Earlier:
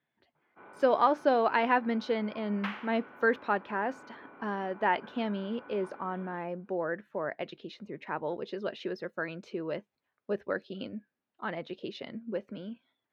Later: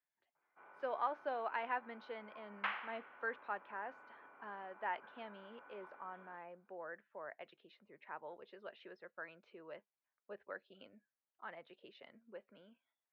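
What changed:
speech -11.5 dB; first sound -6.5 dB; master: add three-band isolator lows -14 dB, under 540 Hz, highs -21 dB, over 3400 Hz

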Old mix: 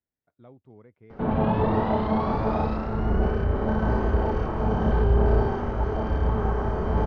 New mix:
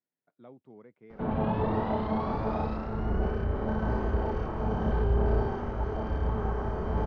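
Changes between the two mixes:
speech: add HPF 150 Hz 24 dB/oct; background -5.5 dB

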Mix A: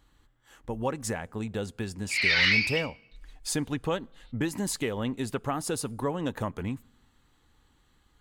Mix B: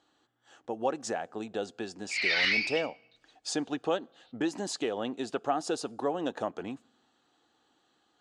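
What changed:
speech: add speaker cabinet 320–7000 Hz, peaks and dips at 330 Hz +4 dB, 720 Hz +8 dB, 1000 Hz -5 dB, 2100 Hz -9 dB; background -4.0 dB

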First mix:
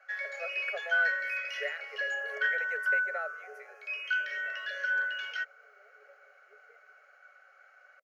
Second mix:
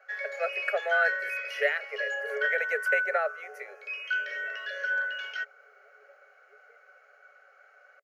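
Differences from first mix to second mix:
speech +10.5 dB; first sound: remove Bessel high-pass 740 Hz, order 4

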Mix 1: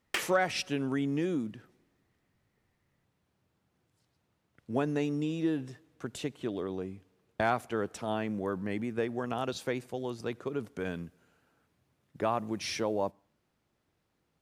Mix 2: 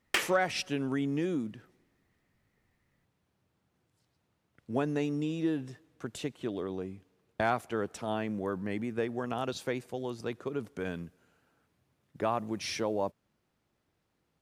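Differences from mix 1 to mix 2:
background +4.0 dB; reverb: off

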